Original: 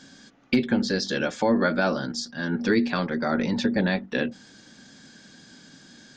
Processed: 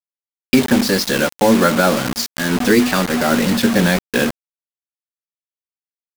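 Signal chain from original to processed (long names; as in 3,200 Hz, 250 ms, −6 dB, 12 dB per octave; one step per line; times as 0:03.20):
pitch vibrato 0.44 Hz 59 cents
bit reduction 5 bits
level +8.5 dB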